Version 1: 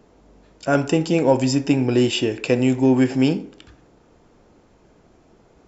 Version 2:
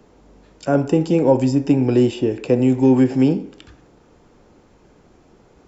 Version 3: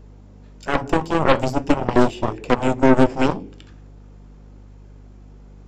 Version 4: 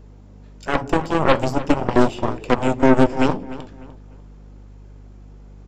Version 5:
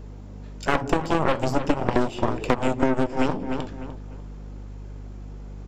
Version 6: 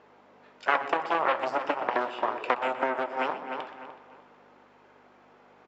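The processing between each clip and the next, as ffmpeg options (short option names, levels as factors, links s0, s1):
-filter_complex "[0:a]bandreject=f=660:w=16,acrossover=split=340|970[s0][s1][s2];[s2]acompressor=threshold=0.01:ratio=4[s3];[s0][s1][s3]amix=inputs=3:normalize=0,volume=1.33"
-af "aeval=exprs='val(0)+0.0112*(sin(2*PI*50*n/s)+sin(2*PI*2*50*n/s)/2+sin(2*PI*3*50*n/s)/3+sin(2*PI*4*50*n/s)/4+sin(2*PI*5*50*n/s)/5)':c=same,aeval=exprs='0.668*(cos(1*acos(clip(val(0)/0.668,-1,1)))-cos(1*PI/2))+0.211*(cos(4*acos(clip(val(0)/0.668,-1,1)))-cos(4*PI/2))+0.188*(cos(7*acos(clip(val(0)/0.668,-1,1)))-cos(7*PI/2))':c=same,flanger=delay=1.8:depth=7.1:regen=-77:speed=0.41:shape=triangular,volume=1.19"
-filter_complex "[0:a]asplit=2[s0][s1];[s1]adelay=299,lowpass=f=3500:p=1,volume=0.158,asplit=2[s2][s3];[s3]adelay=299,lowpass=f=3500:p=1,volume=0.33,asplit=2[s4][s5];[s5]adelay=299,lowpass=f=3500:p=1,volume=0.33[s6];[s0][s2][s4][s6]amix=inputs=4:normalize=0"
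-af "acompressor=threshold=0.1:ratio=12,aeval=exprs='clip(val(0),-1,0.0237)':c=same,volume=1.68"
-af "highpass=740,lowpass=2500,aecho=1:1:124|248|372|496|620|744:0.2|0.116|0.0671|0.0389|0.0226|0.0131,volume=1.19"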